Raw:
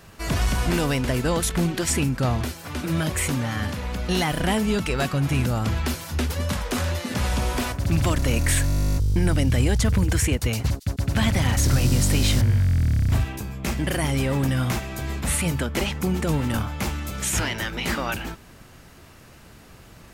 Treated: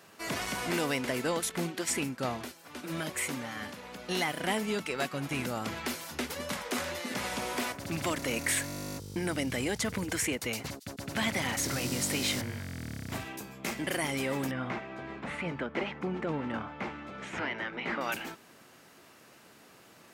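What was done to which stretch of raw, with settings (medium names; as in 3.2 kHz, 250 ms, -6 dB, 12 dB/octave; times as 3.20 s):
1.31–5.31 s: upward expansion, over -36 dBFS
14.51–18.01 s: low-pass 2.1 kHz
whole clip: high-pass 250 Hz 12 dB/octave; dynamic bell 2.1 kHz, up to +5 dB, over -46 dBFS, Q 6.2; trim -5.5 dB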